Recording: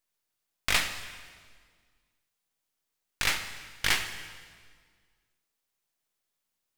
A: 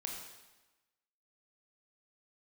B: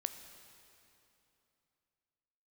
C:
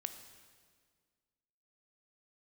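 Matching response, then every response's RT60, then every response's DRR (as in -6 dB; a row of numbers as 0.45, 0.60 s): C; 1.1, 3.0, 1.8 s; 0.0, 8.0, 8.0 dB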